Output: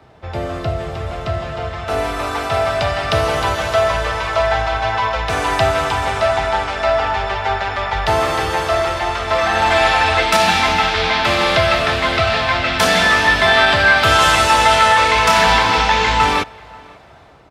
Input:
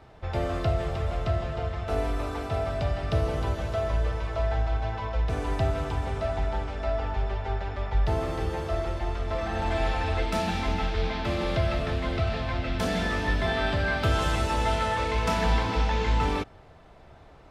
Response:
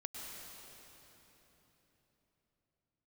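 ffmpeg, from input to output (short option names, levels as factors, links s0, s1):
-filter_complex "[0:a]highpass=74,acrossover=split=150|710[s0][s1][s2];[s2]dynaudnorm=f=860:g=5:m=5.01[s3];[s0][s1][s3]amix=inputs=3:normalize=0,asplit=2[s4][s5];[s5]adelay=536.4,volume=0.0631,highshelf=f=4000:g=-12.1[s6];[s4][s6]amix=inputs=2:normalize=0,alimiter=level_in=2.11:limit=0.891:release=50:level=0:latency=1,volume=0.891"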